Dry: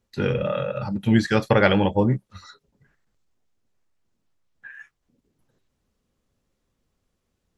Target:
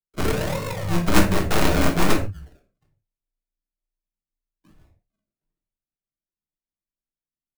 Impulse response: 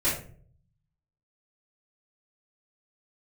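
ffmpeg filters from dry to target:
-filter_complex "[0:a]flanger=delay=15:depth=6.2:speed=1,agate=range=0.0224:threshold=0.002:ratio=3:detection=peak,firequalizer=gain_entry='entry(130,0);entry(260,5);entry(1200,-25);entry(2000,-10);entry(3300,-27);entry(8300,12)':delay=0.05:min_phase=1,acrossover=split=3400[s0][s1];[s1]acompressor=threshold=0.00251:ratio=4:attack=1:release=60[s2];[s0][s2]amix=inputs=2:normalize=0,acrusher=samples=38:mix=1:aa=0.000001:lfo=1:lforange=22.8:lforate=1.2,afreqshift=-29,aeval=exprs='0.562*(cos(1*acos(clip(val(0)/0.562,-1,1)))-cos(1*PI/2))+0.251*(cos(7*acos(clip(val(0)/0.562,-1,1)))-cos(7*PI/2))+0.112*(cos(8*acos(clip(val(0)/0.562,-1,1)))-cos(8*PI/2))':c=same,asplit=2[s3][s4];[1:a]atrim=start_sample=2205,atrim=end_sample=6615[s5];[s4][s5]afir=irnorm=-1:irlink=0,volume=0.224[s6];[s3][s6]amix=inputs=2:normalize=0,volume=0.631"

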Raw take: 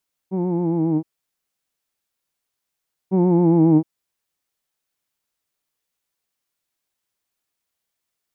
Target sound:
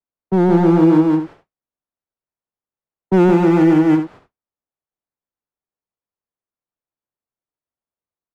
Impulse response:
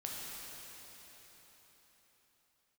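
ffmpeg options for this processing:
-filter_complex "[0:a]aeval=exprs='val(0)+0.5*0.0178*sgn(val(0))':c=same,agate=range=0.00112:threshold=0.0141:ratio=16:detection=peak,acrossover=split=210|260[s0][s1][s2];[s0]acompressor=threshold=0.0251:ratio=6[s3];[s3][s1][s2]amix=inputs=3:normalize=0,lowpass=1100,asplit=2[s4][s5];[s5]aeval=exprs='0.0631*(abs(mod(val(0)/0.0631+3,4)-2)-1)':c=same,volume=0.596[s6];[s4][s6]amix=inputs=2:normalize=0,aecho=1:1:169.1|239.1:0.708|0.251,alimiter=limit=0.2:level=0:latency=1:release=249,volume=2.66"

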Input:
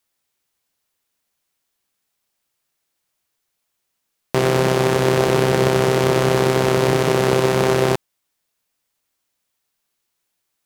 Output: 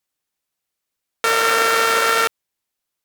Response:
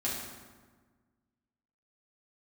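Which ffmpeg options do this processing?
-af "asetrate=154350,aresample=44100"

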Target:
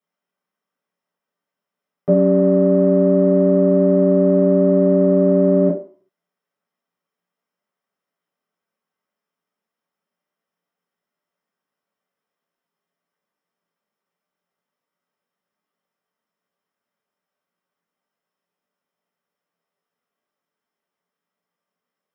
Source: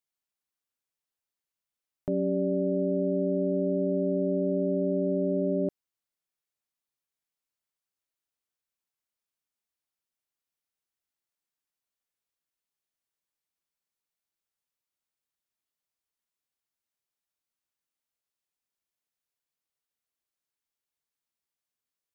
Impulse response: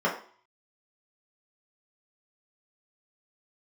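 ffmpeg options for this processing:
-filter_complex "[0:a]lowshelf=f=420:g=3,asplit=2[s0][s1];[s1]asoftclip=type=tanh:threshold=0.0282,volume=0.316[s2];[s0][s2]amix=inputs=2:normalize=0[s3];[1:a]atrim=start_sample=2205[s4];[s3][s4]afir=irnorm=-1:irlink=0,volume=0.631"

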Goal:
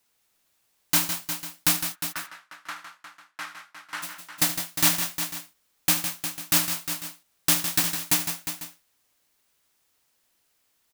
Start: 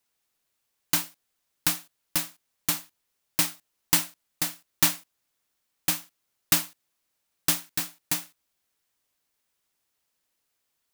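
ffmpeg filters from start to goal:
-filter_complex "[0:a]alimiter=limit=0.188:level=0:latency=1:release=11,asplit=3[s0][s1][s2];[s0]afade=t=out:st=1.76:d=0.02[s3];[s1]bandpass=f=1400:t=q:w=2.5:csg=0,afade=t=in:st=1.76:d=0.02,afade=t=out:st=4.02:d=0.02[s4];[s2]afade=t=in:st=4.02:d=0.02[s5];[s3][s4][s5]amix=inputs=3:normalize=0,aecho=1:1:76|158|180|356|497:0.211|0.355|0.15|0.335|0.158,volume=2.11"

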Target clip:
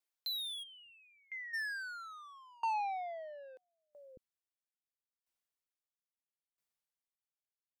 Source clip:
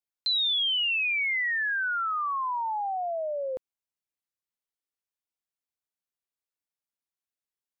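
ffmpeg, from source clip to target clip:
-filter_complex "[0:a]asplit=3[s0][s1][s2];[s0]afade=t=out:st=0.62:d=0.02[s3];[s1]agate=range=0.0224:threshold=0.158:ratio=3:detection=peak,afade=t=in:st=0.62:d=0.02,afade=t=out:st=1.53:d=0.02[s4];[s2]afade=t=in:st=1.53:d=0.02[s5];[s3][s4][s5]amix=inputs=3:normalize=0,asplit=2[s6][s7];[s7]asoftclip=type=hard:threshold=0.0106,volume=0.422[s8];[s6][s8]amix=inputs=2:normalize=0,asplit=3[s9][s10][s11];[s9]afade=t=out:st=2.73:d=0.02[s12];[s10]lowpass=f=1600:t=q:w=3.3,afade=t=in:st=2.73:d=0.02,afade=t=out:st=3.55:d=0.02[s13];[s11]afade=t=in:st=3.55:d=0.02[s14];[s12][s13][s14]amix=inputs=3:normalize=0,asoftclip=type=tanh:threshold=0.0316,acrossover=split=300[s15][s16];[s15]adelay=600[s17];[s17][s16]amix=inputs=2:normalize=0,aeval=exprs='val(0)*pow(10,-30*if(lt(mod(0.76*n/s,1),2*abs(0.76)/1000),1-mod(0.76*n/s,1)/(2*abs(0.76)/1000),(mod(0.76*n/s,1)-2*abs(0.76)/1000)/(1-2*abs(0.76)/1000))/20)':c=same,volume=1.12"

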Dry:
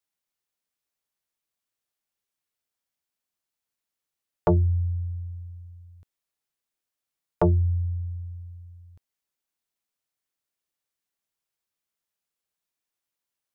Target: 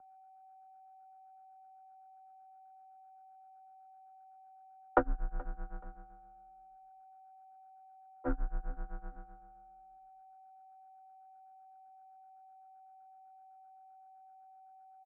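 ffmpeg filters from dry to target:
-filter_complex "[0:a]aeval=exprs='val(0)+0.5*0.0237*sgn(val(0))':c=same,highpass=f=110:p=1,agate=range=0.02:threshold=0.02:ratio=16:detection=peak,equalizer=f=160:t=o:w=0.83:g=-14.5,acrossover=split=140|620[s0][s1][s2];[s1]alimiter=level_in=1.12:limit=0.0631:level=0:latency=1:release=265,volume=0.891[s3];[s0][s3][s2]amix=inputs=3:normalize=0,tremolo=f=8.7:d=0.96,aeval=exprs='val(0)+0.00316*sin(2*PI*900*n/s)':c=same,adynamicsmooth=sensitivity=2:basefreq=710,asetrate=39690,aresample=44100,lowpass=f=1500:t=q:w=8,afreqshift=-49,asplit=2[s4][s5];[s5]aecho=0:1:427|854:0.075|0.021[s6];[s4][s6]amix=inputs=2:normalize=0,volume=0.841"

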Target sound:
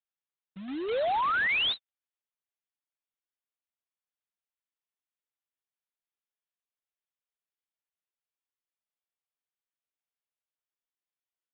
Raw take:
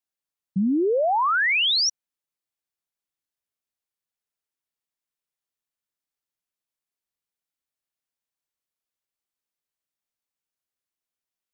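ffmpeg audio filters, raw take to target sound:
-af "highpass=440,aresample=8000,acrusher=bits=2:mode=log:mix=0:aa=0.000001,aresample=44100,volume=0.473"

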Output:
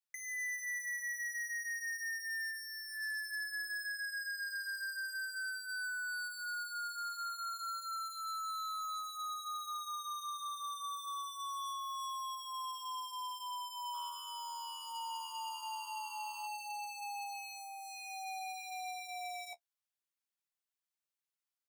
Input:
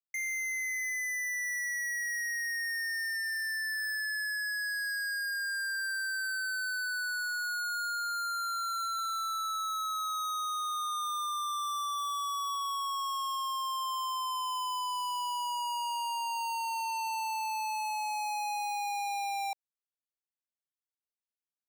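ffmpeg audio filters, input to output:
-filter_complex "[0:a]highpass=880,alimiter=level_in=3.98:limit=0.0631:level=0:latency=1,volume=0.251,afreqshift=-78,flanger=delay=8.1:depth=7.6:regen=-29:speed=0.17:shape=sinusoidal,asplit=3[s0][s1][s2];[s0]afade=t=out:st=13.93:d=0.02[s3];[s1]asplit=8[s4][s5][s6][s7][s8][s9][s10][s11];[s5]adelay=102,afreqshift=74,volume=0.224[s12];[s6]adelay=204,afreqshift=148,volume=0.143[s13];[s7]adelay=306,afreqshift=222,volume=0.0912[s14];[s8]adelay=408,afreqshift=296,volume=0.0589[s15];[s9]adelay=510,afreqshift=370,volume=0.0376[s16];[s10]adelay=612,afreqshift=444,volume=0.024[s17];[s11]adelay=714,afreqshift=518,volume=0.0153[s18];[s4][s12][s13][s14][s15][s16][s17][s18]amix=inputs=8:normalize=0,afade=t=in:st=13.93:d=0.02,afade=t=out:st=16.46:d=0.02[s19];[s2]afade=t=in:st=16.46:d=0.02[s20];[s3][s19][s20]amix=inputs=3:normalize=0,volume=1.78"

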